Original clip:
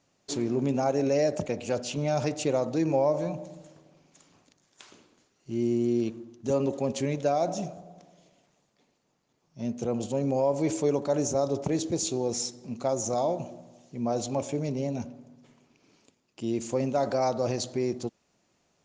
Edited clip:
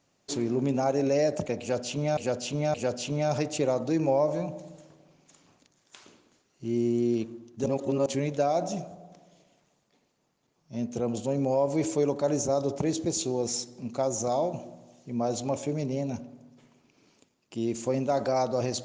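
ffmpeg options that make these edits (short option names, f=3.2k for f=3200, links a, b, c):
-filter_complex "[0:a]asplit=5[a][b][c][d][e];[a]atrim=end=2.172[f];[b]atrim=start=1.598:end=2.172[g];[c]atrim=start=1.598:end=6.522[h];[d]atrim=start=6.518:end=6.922,asetpts=PTS-STARTPTS,areverse[i];[e]atrim=start=6.918[j];[f][g]acrossfade=d=0.004:c1=hsin:c2=hsin[k];[k][h]acrossfade=d=0.004:c1=hsin:c2=hsin[l];[l][i]acrossfade=d=0.004:c1=hsin:c2=hsin[m];[m][j]acrossfade=d=0.004:c1=hsin:c2=hsin"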